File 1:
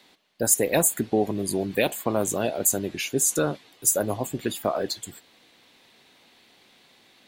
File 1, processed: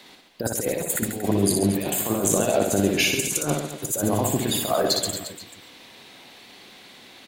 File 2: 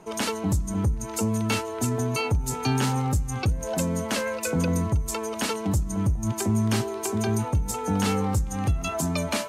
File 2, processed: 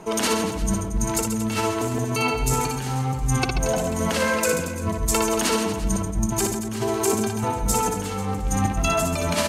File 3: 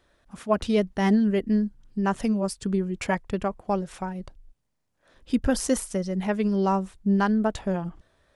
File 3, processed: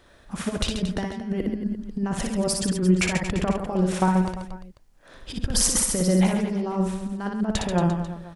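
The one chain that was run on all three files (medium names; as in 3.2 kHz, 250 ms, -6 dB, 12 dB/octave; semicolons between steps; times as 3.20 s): compressor with a negative ratio -28 dBFS, ratio -0.5; reverse bouncing-ball echo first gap 60 ms, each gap 1.25×, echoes 5; trim +4 dB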